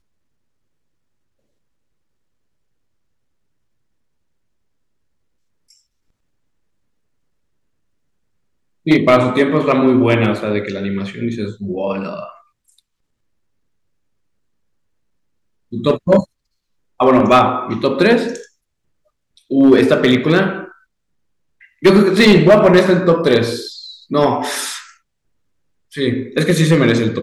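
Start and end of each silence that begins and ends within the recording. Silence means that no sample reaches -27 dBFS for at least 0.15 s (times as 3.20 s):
12.29–15.73 s
16.24–17.00 s
18.41–19.51 s
20.68–21.83 s
23.90–24.11 s
24.82–25.95 s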